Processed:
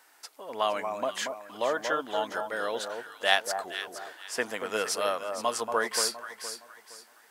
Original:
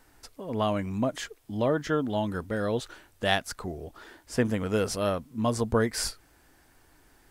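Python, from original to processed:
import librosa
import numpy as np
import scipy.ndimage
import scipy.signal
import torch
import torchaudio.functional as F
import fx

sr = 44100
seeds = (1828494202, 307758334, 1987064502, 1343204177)

p1 = scipy.signal.sosfilt(scipy.signal.butter(2, 720.0, 'highpass', fs=sr, output='sos'), x)
p2 = p1 + fx.echo_alternate(p1, sr, ms=233, hz=1200.0, feedback_pct=55, wet_db=-5.5, dry=0)
y = F.gain(torch.from_numpy(p2), 3.5).numpy()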